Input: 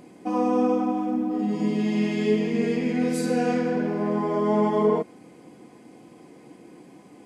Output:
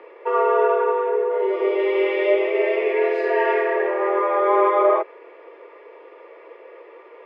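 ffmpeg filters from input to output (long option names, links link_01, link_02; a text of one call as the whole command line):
ffmpeg -i in.wav -af "afreqshift=180,highpass=frequency=360:width=0.5412,highpass=frequency=360:width=1.3066,equalizer=frequency=720:width_type=q:width=4:gain=-7,equalizer=frequency=1100:width_type=q:width=4:gain=4,equalizer=frequency=1900:width_type=q:width=4:gain=9,lowpass=frequency=2900:width=0.5412,lowpass=frequency=2900:width=1.3066,volume=5.5dB" out.wav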